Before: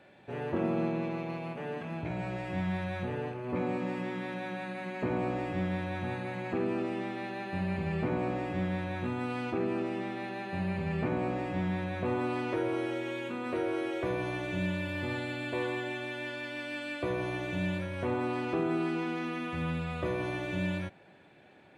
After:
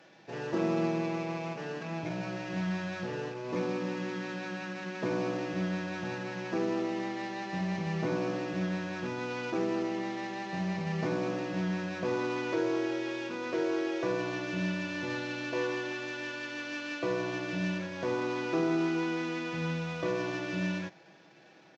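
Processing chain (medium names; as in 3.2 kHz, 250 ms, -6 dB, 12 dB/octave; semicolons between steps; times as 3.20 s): CVSD coder 32 kbps; high-pass 160 Hz 12 dB/octave; comb 6.1 ms, depth 48%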